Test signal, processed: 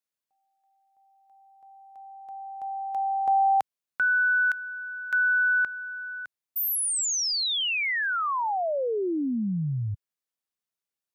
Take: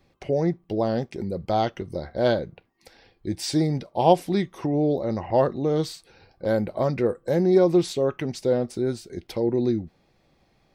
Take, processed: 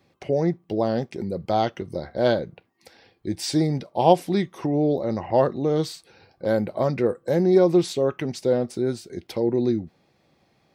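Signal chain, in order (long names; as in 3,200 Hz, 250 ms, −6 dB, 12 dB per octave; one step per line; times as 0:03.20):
high-pass filter 92 Hz
level +1 dB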